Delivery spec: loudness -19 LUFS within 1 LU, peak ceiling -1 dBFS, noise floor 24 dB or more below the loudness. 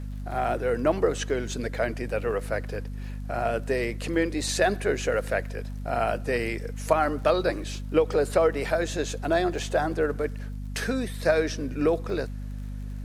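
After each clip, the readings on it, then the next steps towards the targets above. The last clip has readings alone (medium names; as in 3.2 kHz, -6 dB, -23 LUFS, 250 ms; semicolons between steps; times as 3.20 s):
tick rate 40 per s; hum 50 Hz; highest harmonic 250 Hz; hum level -32 dBFS; loudness -27.0 LUFS; peak level -8.0 dBFS; loudness target -19.0 LUFS
-> de-click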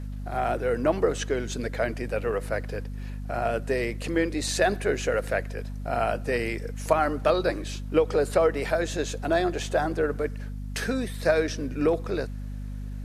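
tick rate 0 per s; hum 50 Hz; highest harmonic 250 Hz; hum level -32 dBFS
-> de-hum 50 Hz, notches 5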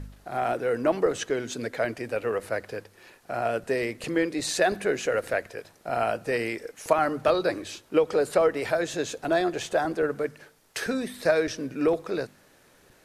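hum not found; loudness -27.0 LUFS; peak level -8.0 dBFS; loudness target -19.0 LUFS
-> trim +8 dB; peak limiter -1 dBFS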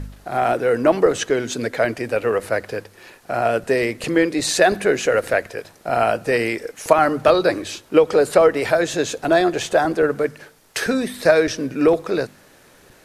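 loudness -19.0 LUFS; peak level -1.0 dBFS; noise floor -51 dBFS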